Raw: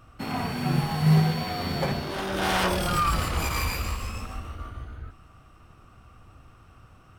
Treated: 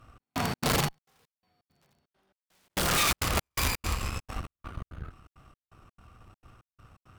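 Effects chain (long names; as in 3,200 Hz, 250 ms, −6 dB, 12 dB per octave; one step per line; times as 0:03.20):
wrap-around overflow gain 19.5 dB
0:00.88–0:02.70: gate with flip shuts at −28 dBFS, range −39 dB
harmonic generator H 7 −28 dB, 8 −18 dB, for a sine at −19.5 dBFS
gate pattern "xx..xx.xxxx." 168 BPM −60 dB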